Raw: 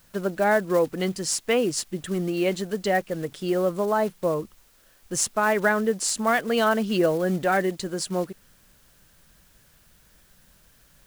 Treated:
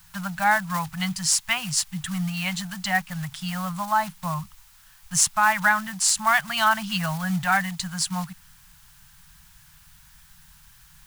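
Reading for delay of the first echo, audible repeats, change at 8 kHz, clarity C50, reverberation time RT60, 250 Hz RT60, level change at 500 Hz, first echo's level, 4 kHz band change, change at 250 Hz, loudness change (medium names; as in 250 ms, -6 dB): no echo, no echo, +5.5 dB, no reverb, no reverb, no reverb, -15.0 dB, no echo, +5.0 dB, -3.5 dB, +1.0 dB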